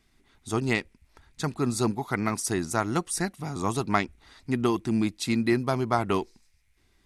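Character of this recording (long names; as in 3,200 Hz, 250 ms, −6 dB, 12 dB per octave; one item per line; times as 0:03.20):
background noise floor −66 dBFS
spectral slope −5.0 dB per octave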